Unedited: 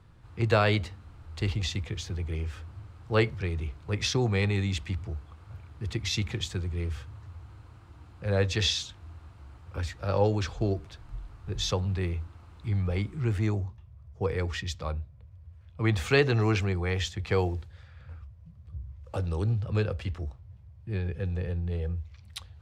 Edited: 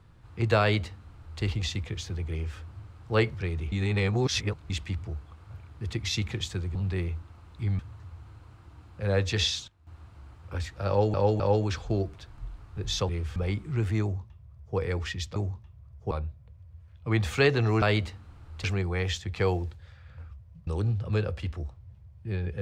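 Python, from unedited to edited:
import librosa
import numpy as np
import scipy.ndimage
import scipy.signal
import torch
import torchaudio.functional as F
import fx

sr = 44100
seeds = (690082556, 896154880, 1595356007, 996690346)

y = fx.edit(x, sr, fx.duplicate(start_s=0.6, length_s=0.82, to_s=16.55),
    fx.reverse_span(start_s=3.72, length_s=0.98),
    fx.swap(start_s=6.75, length_s=0.27, other_s=11.8, other_length_s=1.04),
    fx.fade_down_up(start_s=8.62, length_s=0.77, db=-15.0, fade_s=0.29, curve='log'),
    fx.repeat(start_s=10.11, length_s=0.26, count=3),
    fx.duplicate(start_s=13.5, length_s=0.75, to_s=14.84),
    fx.cut(start_s=18.58, length_s=0.71), tone=tone)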